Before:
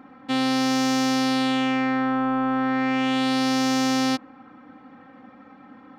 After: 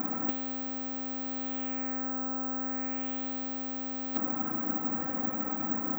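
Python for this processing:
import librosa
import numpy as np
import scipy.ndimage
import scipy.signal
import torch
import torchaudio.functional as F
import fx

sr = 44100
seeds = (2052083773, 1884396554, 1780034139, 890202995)

y = fx.lowpass(x, sr, hz=1500.0, slope=6)
y = fx.over_compress(y, sr, threshold_db=-32.0, ratio=-0.5)
y = (np.kron(scipy.signal.resample_poly(y, 1, 2), np.eye(2)[0]) * 2)[:len(y)]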